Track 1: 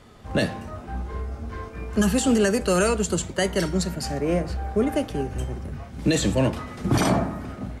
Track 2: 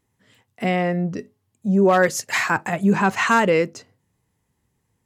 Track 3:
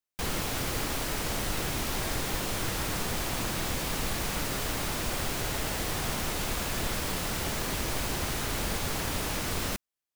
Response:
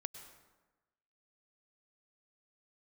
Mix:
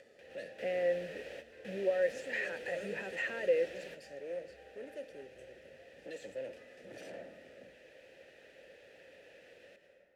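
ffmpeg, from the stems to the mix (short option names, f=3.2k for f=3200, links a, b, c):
-filter_complex "[0:a]aexciter=amount=3.2:drive=7.3:freq=4.6k,volume=23.5dB,asoftclip=hard,volume=-23.5dB,volume=-7dB[a];[1:a]volume=-3dB,asplit=2[b][c];[2:a]volume=-3.5dB,asplit=2[d][e];[e]volume=-7.5dB[f];[c]apad=whole_len=447973[g];[d][g]sidechaingate=range=-33dB:threshold=-56dB:ratio=16:detection=peak[h];[a][b]amix=inputs=2:normalize=0,alimiter=limit=-15.5dB:level=0:latency=1,volume=0dB[i];[3:a]atrim=start_sample=2205[j];[f][j]afir=irnorm=-1:irlink=0[k];[h][i][k]amix=inputs=3:normalize=0,acompressor=mode=upward:threshold=-37dB:ratio=2.5,asplit=3[l][m][n];[l]bandpass=f=530:t=q:w=8,volume=0dB[o];[m]bandpass=f=1.84k:t=q:w=8,volume=-6dB[p];[n]bandpass=f=2.48k:t=q:w=8,volume=-9dB[q];[o][p][q]amix=inputs=3:normalize=0"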